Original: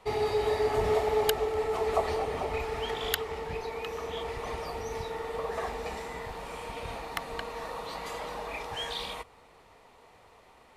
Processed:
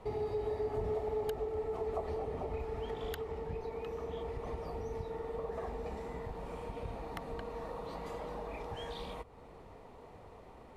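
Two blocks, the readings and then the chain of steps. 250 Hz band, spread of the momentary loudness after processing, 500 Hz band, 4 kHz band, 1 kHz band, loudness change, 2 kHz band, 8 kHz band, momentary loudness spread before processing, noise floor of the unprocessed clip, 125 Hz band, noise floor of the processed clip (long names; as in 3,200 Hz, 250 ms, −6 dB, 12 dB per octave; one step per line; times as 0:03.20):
−3.0 dB, 17 LU, −6.5 dB, −16.0 dB, −9.5 dB, −7.5 dB, −14.0 dB, below −15 dB, 11 LU, −58 dBFS, −2.0 dB, −54 dBFS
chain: tilt shelving filter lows +8.5 dB, about 880 Hz
downward compressor 2 to 1, threshold −46 dBFS, peak gain reduction 15 dB
level +1 dB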